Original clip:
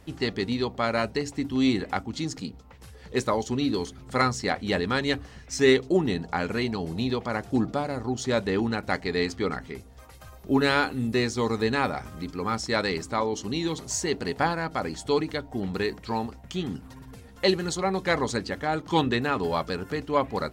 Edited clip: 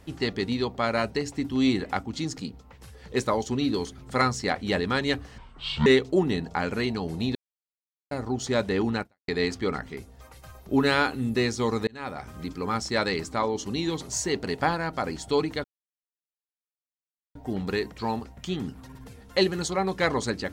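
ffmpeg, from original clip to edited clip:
-filter_complex "[0:a]asplit=8[s0][s1][s2][s3][s4][s5][s6][s7];[s0]atrim=end=5.384[s8];[s1]atrim=start=5.38:end=5.64,asetpts=PTS-STARTPTS,asetrate=23814,aresample=44100,atrim=end_sample=21233,asetpts=PTS-STARTPTS[s9];[s2]atrim=start=5.636:end=7.13,asetpts=PTS-STARTPTS,afade=t=out:st=1.49:d=0.004:c=hsin[s10];[s3]atrim=start=7.13:end=7.89,asetpts=PTS-STARTPTS,volume=0[s11];[s4]atrim=start=7.89:end=9.06,asetpts=PTS-STARTPTS,afade=t=in:d=0.004:c=hsin,afade=t=out:st=0.91:d=0.26:c=exp[s12];[s5]atrim=start=9.06:end=11.65,asetpts=PTS-STARTPTS,afade=t=in:d=0.004:c=hsin,afade=t=out:st=2.586:d=0.004:c=hsin[s13];[s6]atrim=start=11.65:end=15.42,asetpts=PTS-STARTPTS,afade=t=in:d=0.54,afade=t=out:st=3.766:d=0.004:c=hsin,apad=pad_dur=1.71[s14];[s7]atrim=start=15.42,asetpts=PTS-STARTPTS,afade=t=in:d=0.004:c=hsin[s15];[s8][s9]acrossfade=d=0.004:c1=hsin:c2=hsin[s16];[s10][s11][s12][s13][s14][s15]concat=n=6:v=0:a=1[s17];[s16][s17]acrossfade=d=0.004:c1=hsin:c2=hsin"

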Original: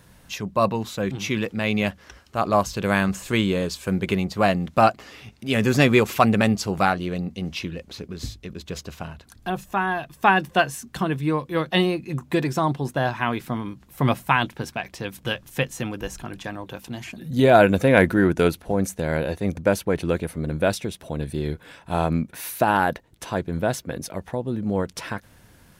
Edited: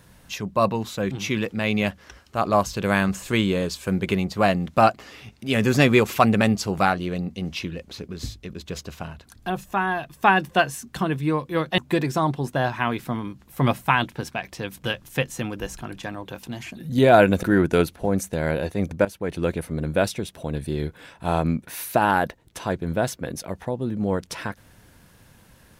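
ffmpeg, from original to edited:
-filter_complex "[0:a]asplit=4[s0][s1][s2][s3];[s0]atrim=end=11.782[s4];[s1]atrim=start=12.188:end=17.842[s5];[s2]atrim=start=18.088:end=19.71,asetpts=PTS-STARTPTS,afade=t=out:st=1.618:d=0.004:c=hsin:silence=0.177828[s6];[s3]atrim=start=19.71,asetpts=PTS-STARTPTS,afade=t=in:d=0.46:silence=0.177828[s7];[s4][s5]acrossfade=d=0.004:c1=hsin:c2=hsin[s8];[s6][s7]concat=n=2:v=0:a=1[s9];[s8][s9]acrossfade=d=0.004:c1=hsin:c2=hsin"

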